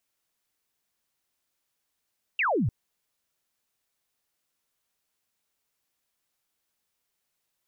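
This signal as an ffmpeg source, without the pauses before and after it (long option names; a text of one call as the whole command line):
ffmpeg -f lavfi -i "aevalsrc='0.0794*clip(t/0.002,0,1)*clip((0.3-t)/0.002,0,1)*sin(2*PI*2900*0.3/log(92/2900)*(exp(log(92/2900)*t/0.3)-1))':duration=0.3:sample_rate=44100" out.wav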